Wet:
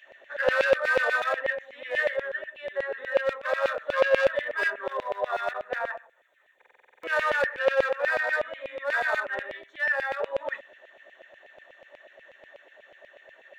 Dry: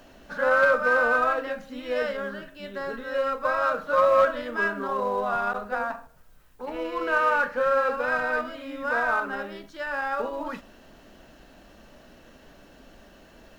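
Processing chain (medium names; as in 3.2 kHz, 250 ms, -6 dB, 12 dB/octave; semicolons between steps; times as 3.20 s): local Wiener filter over 9 samples; resonant high shelf 1.6 kHz +7 dB, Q 1.5; de-hum 45.29 Hz, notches 11; small resonant body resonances 390/550/1800/3500 Hz, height 15 dB, ringing for 30 ms; saturation -9 dBFS, distortion -11 dB; LFO high-pass saw down 8.2 Hz 560–2700 Hz; buffer glitch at 6.57 s, samples 2048, times 9; trim -8.5 dB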